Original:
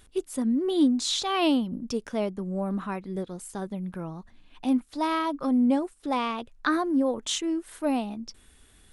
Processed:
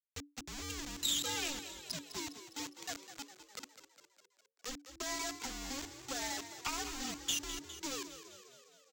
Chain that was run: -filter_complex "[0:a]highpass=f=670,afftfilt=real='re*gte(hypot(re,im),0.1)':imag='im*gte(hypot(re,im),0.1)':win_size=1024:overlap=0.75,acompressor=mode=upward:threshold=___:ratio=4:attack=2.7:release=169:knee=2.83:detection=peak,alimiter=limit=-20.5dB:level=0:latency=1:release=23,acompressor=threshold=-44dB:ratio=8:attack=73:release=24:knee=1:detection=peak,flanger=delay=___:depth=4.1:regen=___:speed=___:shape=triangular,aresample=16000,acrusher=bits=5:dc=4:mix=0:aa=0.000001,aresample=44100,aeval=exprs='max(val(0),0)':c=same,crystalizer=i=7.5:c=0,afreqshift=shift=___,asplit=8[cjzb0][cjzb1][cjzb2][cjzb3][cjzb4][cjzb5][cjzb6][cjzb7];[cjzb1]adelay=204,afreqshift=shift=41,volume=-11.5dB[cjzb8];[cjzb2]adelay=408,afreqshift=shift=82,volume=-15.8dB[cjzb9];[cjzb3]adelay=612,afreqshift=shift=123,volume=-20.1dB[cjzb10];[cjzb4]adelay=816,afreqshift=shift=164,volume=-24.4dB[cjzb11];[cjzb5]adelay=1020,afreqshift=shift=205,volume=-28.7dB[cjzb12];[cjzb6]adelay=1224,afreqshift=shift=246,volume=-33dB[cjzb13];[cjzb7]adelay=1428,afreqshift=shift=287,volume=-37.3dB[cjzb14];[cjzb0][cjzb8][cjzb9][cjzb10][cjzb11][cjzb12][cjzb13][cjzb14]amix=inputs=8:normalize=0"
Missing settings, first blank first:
-45dB, 5.2, -54, 0.61, -290